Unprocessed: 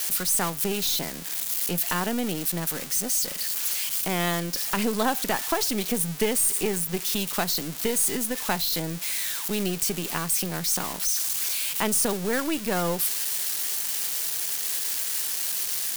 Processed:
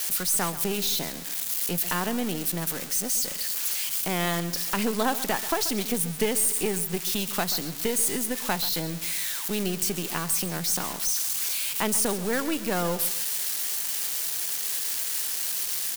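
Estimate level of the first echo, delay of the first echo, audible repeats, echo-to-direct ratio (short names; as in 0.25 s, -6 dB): -14.5 dB, 0.134 s, 2, -14.0 dB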